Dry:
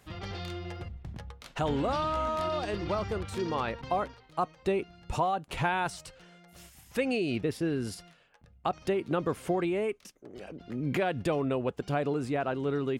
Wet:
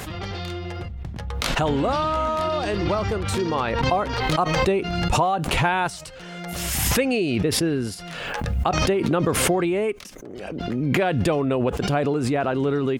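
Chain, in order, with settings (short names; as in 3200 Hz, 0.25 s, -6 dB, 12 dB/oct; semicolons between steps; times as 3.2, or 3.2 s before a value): backwards sustainer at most 28 dB/s; gain +7 dB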